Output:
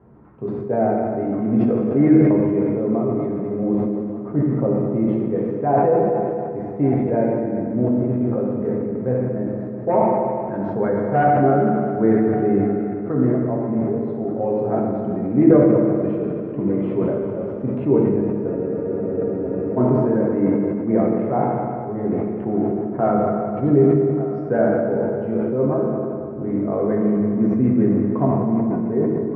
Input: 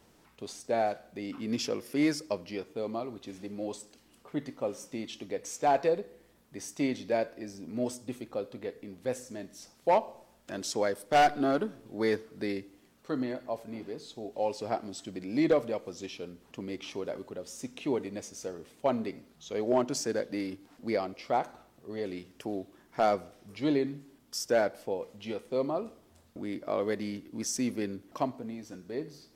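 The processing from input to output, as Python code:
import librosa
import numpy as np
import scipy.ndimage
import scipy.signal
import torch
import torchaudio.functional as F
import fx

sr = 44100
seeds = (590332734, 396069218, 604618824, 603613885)

p1 = scipy.signal.sosfilt(scipy.signal.butter(2, 62.0, 'highpass', fs=sr, output='sos'), x)
p2 = fx.dynamic_eq(p1, sr, hz=840.0, q=1.2, threshold_db=-41.0, ratio=4.0, max_db=-4)
p3 = scipy.signal.sosfilt(scipy.signal.butter(4, 1500.0, 'lowpass', fs=sr, output='sos'), p2)
p4 = fx.rider(p3, sr, range_db=4, speed_s=2.0)
p5 = p3 + (p4 * 10.0 ** (-2.0 / 20.0))
p6 = fx.low_shelf(p5, sr, hz=420.0, db=11.0)
p7 = p6 + fx.echo_single(p6, sr, ms=1183, db=-17.0, dry=0)
p8 = fx.rev_fdn(p7, sr, rt60_s=2.8, lf_ratio=1.0, hf_ratio=0.9, size_ms=44.0, drr_db=-3.5)
p9 = fx.spec_freeze(p8, sr, seeds[0], at_s=18.5, hold_s=1.27)
p10 = fx.sustainer(p9, sr, db_per_s=24.0)
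y = p10 * 10.0 ** (-2.5 / 20.0)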